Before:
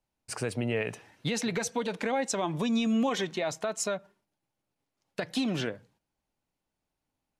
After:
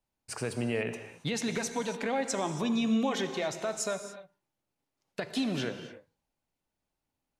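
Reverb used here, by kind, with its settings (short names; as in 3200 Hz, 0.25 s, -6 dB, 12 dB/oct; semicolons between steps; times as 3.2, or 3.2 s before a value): non-linear reverb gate 0.31 s flat, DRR 8 dB; gain -2 dB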